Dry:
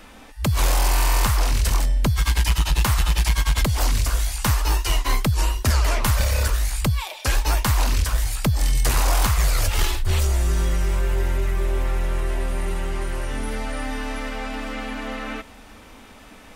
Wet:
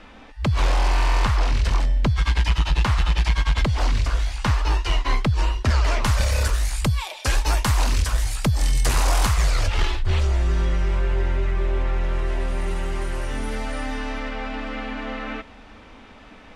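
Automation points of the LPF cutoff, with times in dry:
5.67 s 4000 Hz
6.34 s 10000 Hz
9.28 s 10000 Hz
9.78 s 3900 Hz
11.91 s 3900 Hz
12.9 s 9200 Hz
13.74 s 9200 Hz
14.33 s 4000 Hz

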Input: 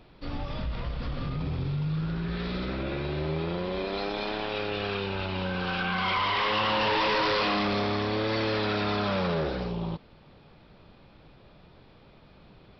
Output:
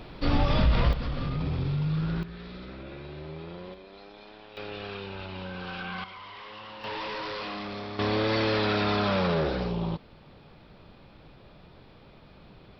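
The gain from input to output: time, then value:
+10.5 dB
from 0.93 s +1.5 dB
from 2.23 s -10 dB
from 3.74 s -17 dB
from 4.57 s -7 dB
from 6.04 s -17.5 dB
from 6.84 s -9.5 dB
from 7.99 s +2 dB

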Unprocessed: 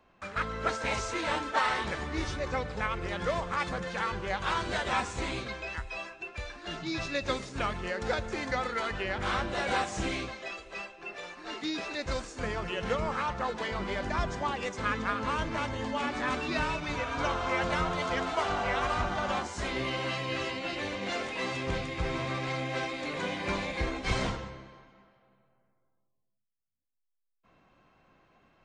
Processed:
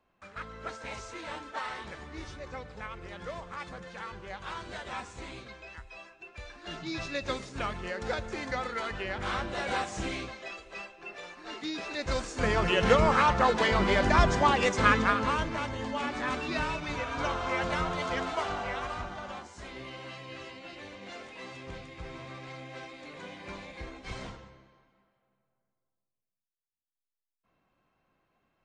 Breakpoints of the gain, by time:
6.12 s -9 dB
6.72 s -2 dB
11.78 s -2 dB
12.65 s +8.5 dB
14.87 s +8.5 dB
15.58 s -1 dB
18.27 s -1 dB
19.4 s -10.5 dB

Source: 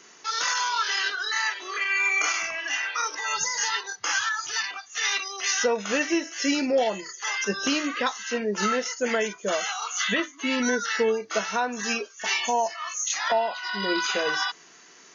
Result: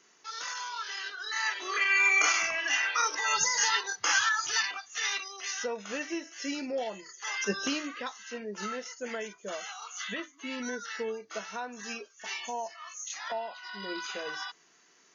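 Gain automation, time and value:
1.12 s -11.5 dB
1.64 s 0 dB
4.56 s 0 dB
5.52 s -10.5 dB
7.04 s -10.5 dB
7.51 s -3 dB
7.99 s -11.5 dB

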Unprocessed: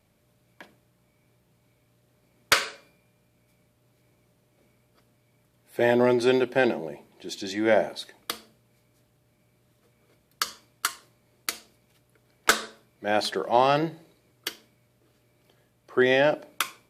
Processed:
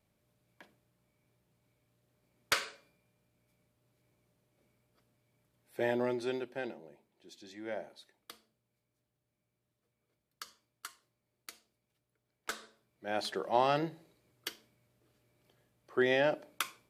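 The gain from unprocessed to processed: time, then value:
5.82 s -10 dB
6.8 s -19 dB
12.5 s -19 dB
13.37 s -8 dB

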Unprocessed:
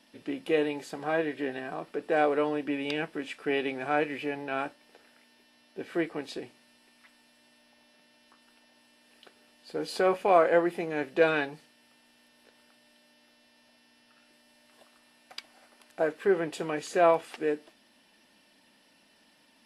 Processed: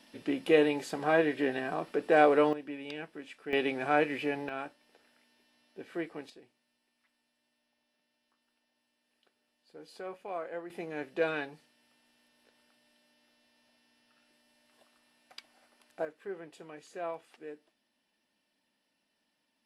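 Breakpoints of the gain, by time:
+2.5 dB
from 2.53 s -9.5 dB
from 3.53 s +0.5 dB
from 4.49 s -7 dB
from 6.3 s -17 dB
from 10.7 s -7 dB
from 16.05 s -16 dB

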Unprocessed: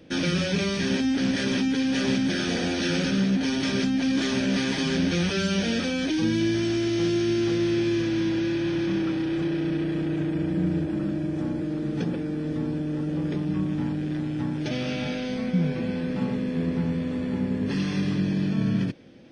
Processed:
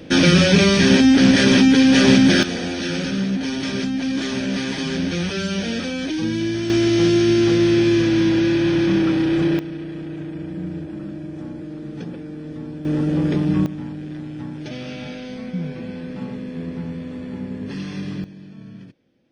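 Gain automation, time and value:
+11.5 dB
from 2.43 s +1 dB
from 6.7 s +8 dB
from 9.59 s -4 dB
from 12.85 s +8 dB
from 13.66 s -3 dB
from 18.24 s -15 dB

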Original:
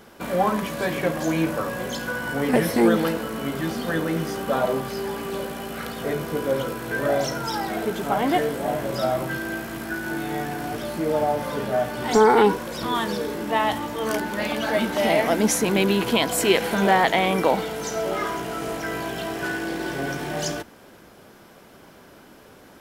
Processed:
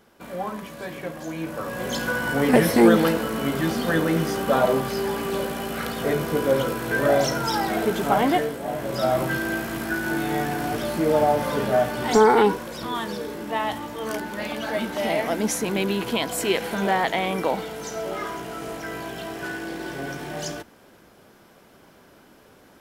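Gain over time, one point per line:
1.38 s -9 dB
1.97 s +3 dB
8.2 s +3 dB
8.6 s -5 dB
9.2 s +3 dB
11.75 s +3 dB
12.91 s -4 dB

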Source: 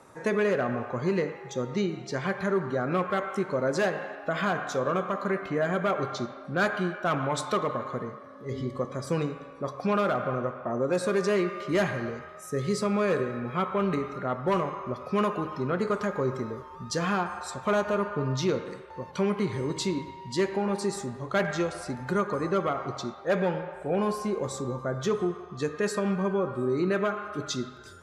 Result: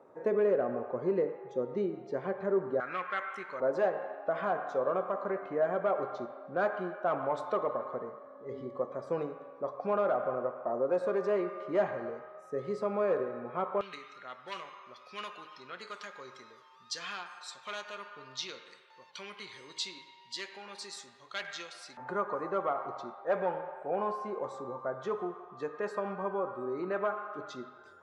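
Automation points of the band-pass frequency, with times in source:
band-pass, Q 1.4
490 Hz
from 2.8 s 1900 Hz
from 3.6 s 660 Hz
from 13.81 s 3700 Hz
from 21.97 s 830 Hz

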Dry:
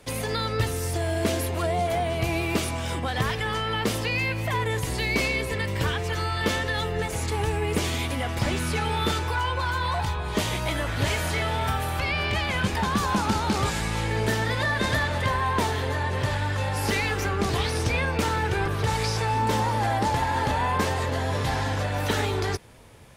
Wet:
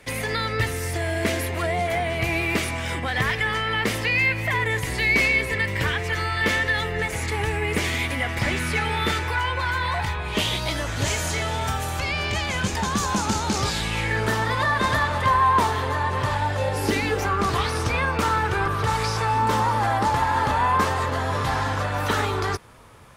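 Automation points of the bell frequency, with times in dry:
bell +10 dB 0.69 oct
10.18 s 2000 Hz
10.91 s 6700 Hz
13.54 s 6700 Hz
14.34 s 1100 Hz
16.31 s 1100 Hz
17.04 s 240 Hz
17.3 s 1200 Hz

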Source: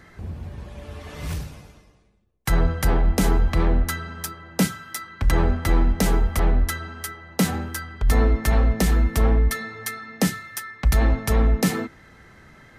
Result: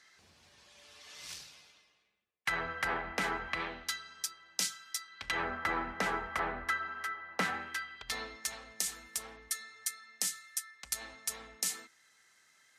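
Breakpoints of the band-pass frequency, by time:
band-pass, Q 1.3
1.25 s 5400 Hz
2.77 s 1800 Hz
3.44 s 1800 Hz
4.04 s 5700 Hz
5.1 s 5700 Hz
5.5 s 1500 Hz
7.41 s 1500 Hz
8.58 s 7700 Hz

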